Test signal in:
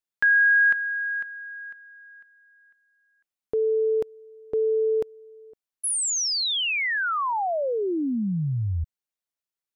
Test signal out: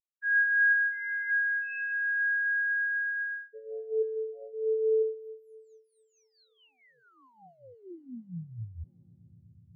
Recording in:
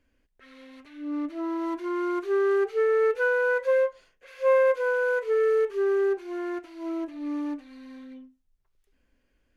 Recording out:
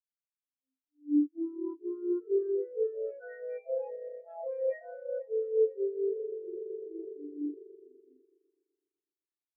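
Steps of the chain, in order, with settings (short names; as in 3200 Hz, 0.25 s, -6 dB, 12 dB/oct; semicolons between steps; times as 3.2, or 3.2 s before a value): echoes that change speed 0.734 s, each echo +4 st, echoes 2; in parallel at -11 dB: requantised 6-bit, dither triangular; on the sum: high shelf 2700 Hz +11.5 dB; harmonic tremolo 4.3 Hz, depth 50%, crossover 1200 Hz; swelling echo 0.125 s, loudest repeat 5, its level -14 dB; modulation noise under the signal 12 dB; reverse; compressor 16:1, threshold -27 dBFS; reverse; spectral expander 4:1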